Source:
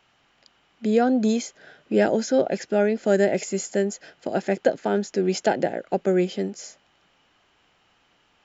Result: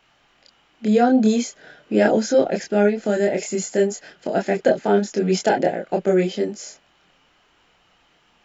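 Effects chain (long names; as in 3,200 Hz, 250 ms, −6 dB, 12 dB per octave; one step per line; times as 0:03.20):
0:02.86–0:03.68: downward compressor 1.5 to 1, threshold −24 dBFS, peak gain reduction 4 dB
multi-voice chorus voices 6, 0.44 Hz, delay 26 ms, depth 3.6 ms
level +6.5 dB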